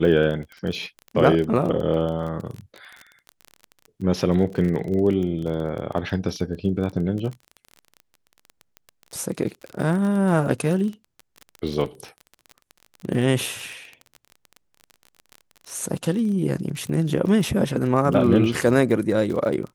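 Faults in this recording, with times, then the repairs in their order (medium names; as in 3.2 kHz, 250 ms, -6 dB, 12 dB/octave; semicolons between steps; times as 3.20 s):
crackle 27 per s -29 dBFS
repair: de-click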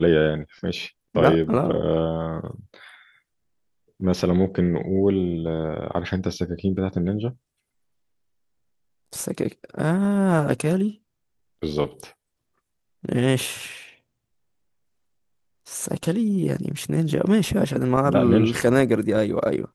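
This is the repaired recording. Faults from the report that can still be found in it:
nothing left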